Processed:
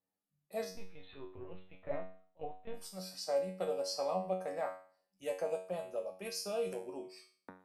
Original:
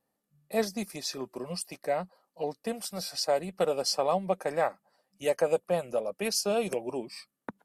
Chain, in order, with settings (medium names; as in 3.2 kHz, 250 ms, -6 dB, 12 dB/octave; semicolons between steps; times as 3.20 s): dynamic bell 610 Hz, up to +5 dB, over -41 dBFS, Q 2.6; 0.71–2.74 s: LPC vocoder at 8 kHz pitch kept; feedback comb 93 Hz, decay 0.45 s, harmonics all, mix 90%; trim -1.5 dB